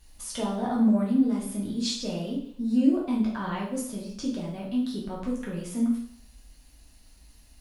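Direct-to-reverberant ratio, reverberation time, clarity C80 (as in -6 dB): -4.5 dB, 0.60 s, 7.5 dB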